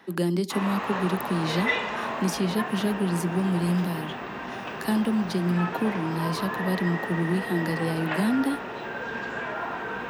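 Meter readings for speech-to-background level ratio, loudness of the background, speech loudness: 4.5 dB, −32.0 LKFS, −27.5 LKFS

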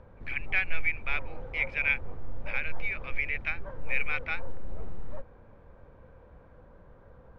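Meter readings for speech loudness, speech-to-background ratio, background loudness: −31.5 LKFS, 15.0 dB, −46.5 LKFS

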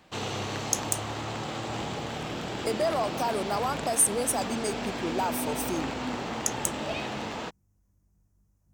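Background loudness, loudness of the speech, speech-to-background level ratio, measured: −33.5 LKFS, −29.5 LKFS, 4.0 dB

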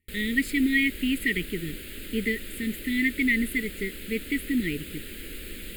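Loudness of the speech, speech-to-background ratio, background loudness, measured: −27.0 LKFS, 12.0 dB, −39.0 LKFS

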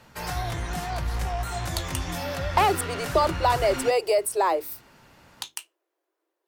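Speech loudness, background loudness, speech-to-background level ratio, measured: −24.5 LKFS, −31.0 LKFS, 6.5 dB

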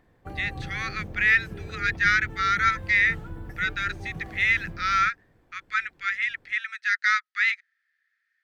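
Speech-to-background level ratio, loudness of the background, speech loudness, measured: 15.0 dB, −39.5 LKFS, −24.5 LKFS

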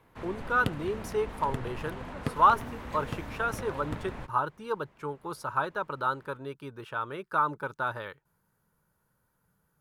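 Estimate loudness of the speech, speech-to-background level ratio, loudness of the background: −31.0 LKFS, 8.5 dB, −39.5 LKFS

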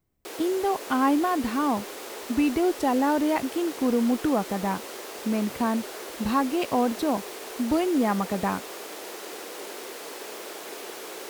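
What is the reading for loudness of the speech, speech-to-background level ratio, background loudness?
−26.0 LKFS, 11.5 dB, −37.5 LKFS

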